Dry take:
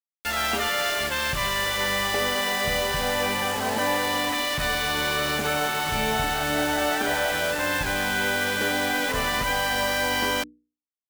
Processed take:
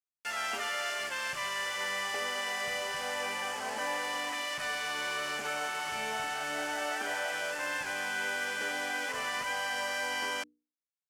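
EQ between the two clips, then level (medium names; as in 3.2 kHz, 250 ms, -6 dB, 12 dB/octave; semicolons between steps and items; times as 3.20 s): high-pass 830 Hz 6 dB/octave; low-pass 8.9 kHz 12 dB/octave; peaking EQ 3.8 kHz -9.5 dB 0.33 oct; -6.5 dB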